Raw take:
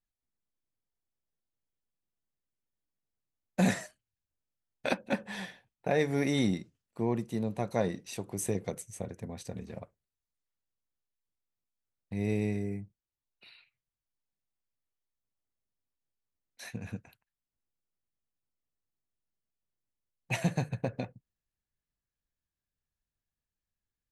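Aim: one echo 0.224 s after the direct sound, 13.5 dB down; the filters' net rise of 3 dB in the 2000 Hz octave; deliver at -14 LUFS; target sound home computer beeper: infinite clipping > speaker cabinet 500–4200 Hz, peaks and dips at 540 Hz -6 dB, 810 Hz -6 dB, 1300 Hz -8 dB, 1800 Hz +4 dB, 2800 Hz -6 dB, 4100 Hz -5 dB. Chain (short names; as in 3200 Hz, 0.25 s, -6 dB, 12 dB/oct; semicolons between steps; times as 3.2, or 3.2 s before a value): bell 2000 Hz +3.5 dB; echo 0.224 s -13.5 dB; infinite clipping; speaker cabinet 500–4200 Hz, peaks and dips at 540 Hz -6 dB, 810 Hz -6 dB, 1300 Hz -8 dB, 1800 Hz +4 dB, 2800 Hz -6 dB, 4100 Hz -5 dB; gain +29.5 dB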